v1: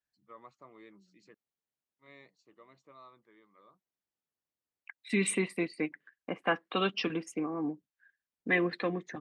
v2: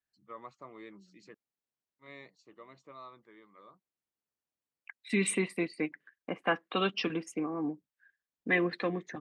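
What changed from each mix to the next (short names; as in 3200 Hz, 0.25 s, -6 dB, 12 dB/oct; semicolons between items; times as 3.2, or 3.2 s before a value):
first voice +5.5 dB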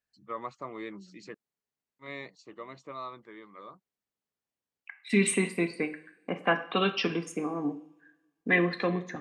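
first voice +9.0 dB; reverb: on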